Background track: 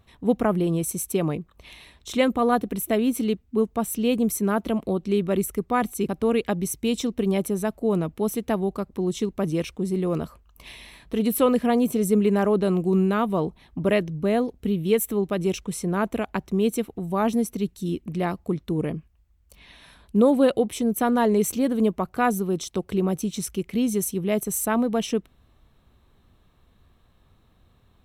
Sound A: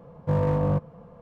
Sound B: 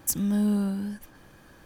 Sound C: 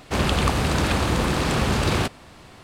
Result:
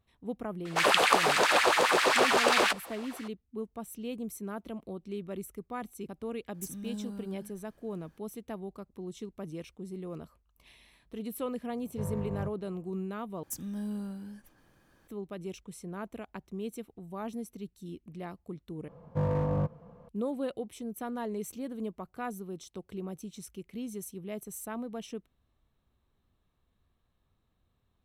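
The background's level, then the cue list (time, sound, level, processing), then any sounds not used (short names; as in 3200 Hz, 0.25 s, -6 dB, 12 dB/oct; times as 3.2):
background track -15.5 dB
0.65 add C -1 dB + LFO high-pass sine 7.5 Hz 430–2100 Hz
6.54 add B -15.5 dB
11.7 add A -15.5 dB + bell 79 Hz +14 dB 0.64 oct
13.43 replace with B -12 dB
18.88 replace with A -5.5 dB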